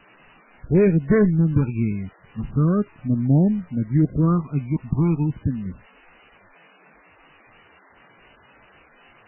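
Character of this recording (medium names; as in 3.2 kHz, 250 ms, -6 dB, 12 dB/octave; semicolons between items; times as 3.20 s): phasing stages 12, 0.36 Hz, lowest notch 520–1100 Hz; a quantiser's noise floor 8-bit, dither triangular; MP3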